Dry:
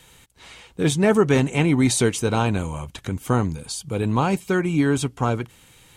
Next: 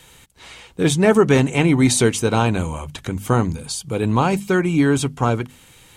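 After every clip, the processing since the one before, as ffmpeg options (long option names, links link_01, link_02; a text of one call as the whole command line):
ffmpeg -i in.wav -af "bandreject=frequency=50:width_type=h:width=6,bandreject=frequency=100:width_type=h:width=6,bandreject=frequency=150:width_type=h:width=6,bandreject=frequency=200:width_type=h:width=6,bandreject=frequency=250:width_type=h:width=6,volume=3.5dB" out.wav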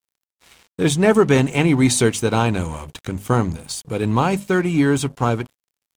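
ffmpeg -i in.wav -af "aeval=exprs='sgn(val(0))*max(abs(val(0))-0.0112,0)':channel_layout=same" out.wav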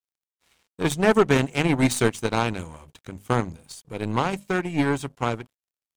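ffmpeg -i in.wav -af "aeval=exprs='0.841*(cos(1*acos(clip(val(0)/0.841,-1,1)))-cos(1*PI/2))+0.0237*(cos(6*acos(clip(val(0)/0.841,-1,1)))-cos(6*PI/2))+0.0841*(cos(7*acos(clip(val(0)/0.841,-1,1)))-cos(7*PI/2))':channel_layout=same,volume=-3.5dB" out.wav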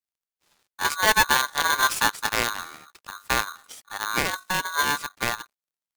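ffmpeg -i in.wav -af "aeval=exprs='val(0)*sgn(sin(2*PI*1300*n/s))':channel_layout=same,volume=-1.5dB" out.wav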